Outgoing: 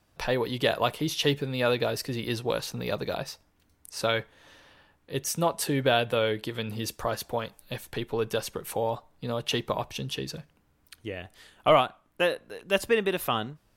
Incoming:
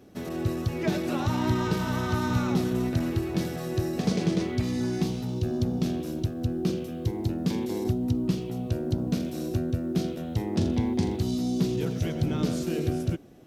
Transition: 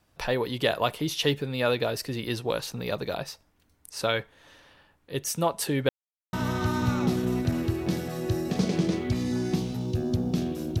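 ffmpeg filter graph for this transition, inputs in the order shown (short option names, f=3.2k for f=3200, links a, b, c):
-filter_complex "[0:a]apad=whole_dur=10.8,atrim=end=10.8,asplit=2[a][b];[a]atrim=end=5.89,asetpts=PTS-STARTPTS,afade=t=out:st=5.886:d=0.004:c=hsin[c];[b]atrim=start=5.89:end=6.33,asetpts=PTS-STARTPTS,volume=0[d];[1:a]atrim=start=1.81:end=6.28,asetpts=PTS-STARTPTS,afade=t=in:d=0.004:c=hsin[e];[c][d][e]concat=n=3:v=0:a=1"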